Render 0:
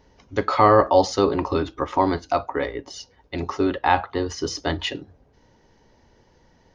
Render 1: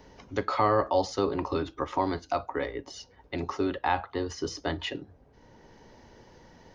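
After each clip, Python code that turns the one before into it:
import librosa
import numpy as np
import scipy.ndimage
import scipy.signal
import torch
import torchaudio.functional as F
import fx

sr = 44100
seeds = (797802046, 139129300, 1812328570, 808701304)

y = fx.band_squash(x, sr, depth_pct=40)
y = y * 10.0 ** (-7.0 / 20.0)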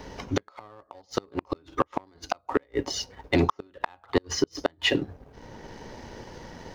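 y = fx.gate_flip(x, sr, shuts_db=-20.0, range_db=-35)
y = fx.leveller(y, sr, passes=1)
y = y * 10.0 ** (8.5 / 20.0)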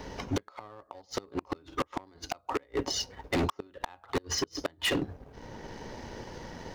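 y = np.clip(10.0 ** (24.5 / 20.0) * x, -1.0, 1.0) / 10.0 ** (24.5 / 20.0)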